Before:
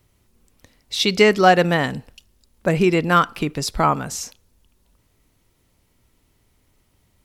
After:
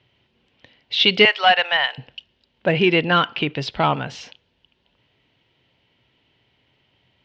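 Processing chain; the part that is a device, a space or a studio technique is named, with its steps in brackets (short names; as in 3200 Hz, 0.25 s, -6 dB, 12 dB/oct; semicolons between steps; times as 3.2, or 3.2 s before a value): 1.25–1.98 HPF 710 Hz 24 dB/oct; overdrive pedal into a guitar cabinet (overdrive pedal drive 11 dB, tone 4500 Hz, clips at -3 dBFS; speaker cabinet 75–4000 Hz, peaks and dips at 130 Hz +8 dB, 1200 Hz -9 dB, 3000 Hz +9 dB); gain -1 dB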